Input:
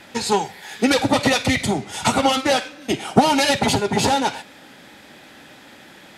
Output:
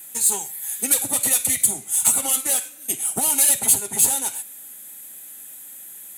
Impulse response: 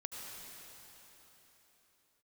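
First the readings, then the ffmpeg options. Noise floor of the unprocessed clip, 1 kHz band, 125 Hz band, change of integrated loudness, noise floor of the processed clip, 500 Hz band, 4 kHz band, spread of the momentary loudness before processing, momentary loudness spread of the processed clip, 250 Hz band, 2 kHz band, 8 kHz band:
−45 dBFS, −14.5 dB, −16.0 dB, +1.0 dB, −41 dBFS, −15.5 dB, −9.0 dB, 8 LU, 21 LU, −16.0 dB, −11.5 dB, +12.5 dB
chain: -af "highshelf=frequency=2500:gain=11.5,aexciter=amount=12.7:drive=9.2:freq=7700,volume=-16dB"

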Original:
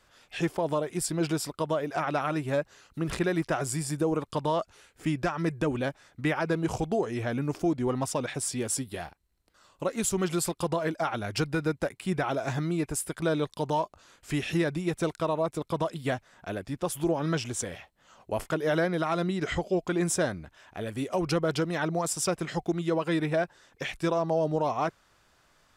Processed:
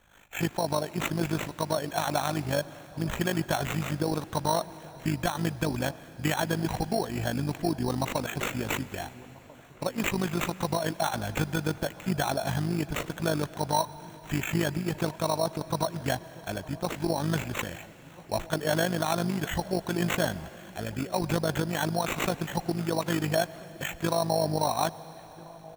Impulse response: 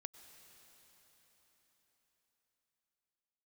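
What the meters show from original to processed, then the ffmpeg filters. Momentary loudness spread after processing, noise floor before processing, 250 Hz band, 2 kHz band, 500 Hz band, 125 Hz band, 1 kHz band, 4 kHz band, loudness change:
9 LU, −65 dBFS, −1.0 dB, +1.5 dB, −1.5 dB, +1.5 dB, +1.5 dB, +4.0 dB, 0.0 dB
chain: -filter_complex "[0:a]aecho=1:1:1.2:0.43,acrusher=samples=9:mix=1:aa=0.000001,tremolo=f=51:d=0.71,asplit=2[link_01][link_02];[link_02]adelay=1341,volume=-20dB,highshelf=frequency=4000:gain=-30.2[link_03];[link_01][link_03]amix=inputs=2:normalize=0,asplit=2[link_04][link_05];[1:a]atrim=start_sample=2205[link_06];[link_05][link_06]afir=irnorm=-1:irlink=0,volume=2dB[link_07];[link_04][link_07]amix=inputs=2:normalize=0,volume=-1.5dB"

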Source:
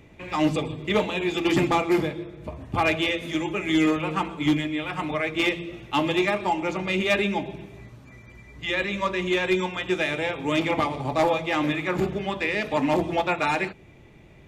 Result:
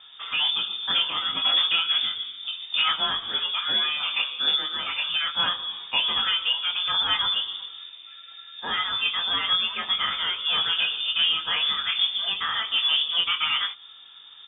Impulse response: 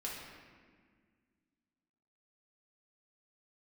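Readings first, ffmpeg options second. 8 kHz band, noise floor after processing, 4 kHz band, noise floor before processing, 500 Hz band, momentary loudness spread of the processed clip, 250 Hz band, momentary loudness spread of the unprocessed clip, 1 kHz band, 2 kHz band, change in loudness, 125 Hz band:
below −35 dB, −47 dBFS, +14.0 dB, −50 dBFS, −20.5 dB, 9 LU, −24.0 dB, 7 LU, −4.5 dB, −1.5 dB, +2.0 dB, below −20 dB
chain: -filter_complex "[0:a]equalizer=frequency=2000:width_type=o:width=0.36:gain=-5,bandreject=frequency=470:width=12,asplit=2[link_01][link_02];[link_02]adelay=21,volume=-3.5dB[link_03];[link_01][link_03]amix=inputs=2:normalize=0,asplit=2[link_04][link_05];[link_05]acompressor=threshold=-28dB:ratio=6,volume=2dB[link_06];[link_04][link_06]amix=inputs=2:normalize=0,lowpass=frequency=3100:width_type=q:width=0.5098,lowpass=frequency=3100:width_type=q:width=0.6013,lowpass=frequency=3100:width_type=q:width=0.9,lowpass=frequency=3100:width_type=q:width=2.563,afreqshift=-3700,volume=-5dB"

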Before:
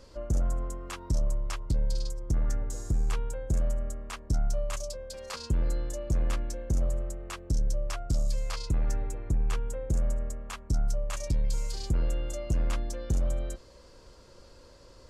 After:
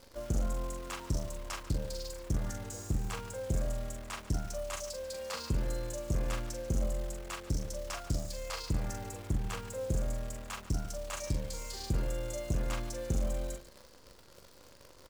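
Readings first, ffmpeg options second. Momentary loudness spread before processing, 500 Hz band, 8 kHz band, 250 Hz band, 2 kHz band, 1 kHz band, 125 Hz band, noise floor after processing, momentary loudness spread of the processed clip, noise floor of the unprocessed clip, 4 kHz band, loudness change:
7 LU, −0.5 dB, 0.0 dB, −1.0 dB, +0.5 dB, 0.0 dB, −4.5 dB, −56 dBFS, 7 LU, −53 dBFS, 0.0 dB, −4.5 dB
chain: -filter_complex "[0:a]highpass=frequency=77:poles=1,acrusher=bits=9:dc=4:mix=0:aa=0.000001,asplit=2[link_01][link_02];[link_02]aecho=0:1:42|143:0.501|0.168[link_03];[link_01][link_03]amix=inputs=2:normalize=0,volume=-1.5dB"

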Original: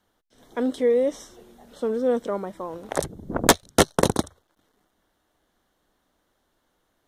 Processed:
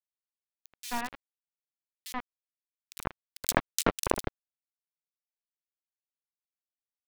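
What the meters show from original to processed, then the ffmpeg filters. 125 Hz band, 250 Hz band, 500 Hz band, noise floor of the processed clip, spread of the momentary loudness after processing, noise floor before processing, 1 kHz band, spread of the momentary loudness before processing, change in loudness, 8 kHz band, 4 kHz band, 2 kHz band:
−10.0 dB, −13.0 dB, −15.0 dB, below −85 dBFS, 14 LU, −72 dBFS, −7.5 dB, 15 LU, −9.0 dB, −7.0 dB, −9.0 dB, −6.5 dB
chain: -filter_complex "[0:a]aeval=exprs='0.75*(cos(1*acos(clip(val(0)/0.75,-1,1)))-cos(1*PI/2))+0.266*(cos(3*acos(clip(val(0)/0.75,-1,1)))-cos(3*PI/2))+0.0841*(cos(4*acos(clip(val(0)/0.75,-1,1)))-cos(4*PI/2))':channel_layout=same,acrusher=bits=4:mix=0:aa=0.000001,acompressor=threshold=-19dB:ratio=6,acrossover=split=2900[link_01][link_02];[link_01]adelay=80[link_03];[link_03][link_02]amix=inputs=2:normalize=0"

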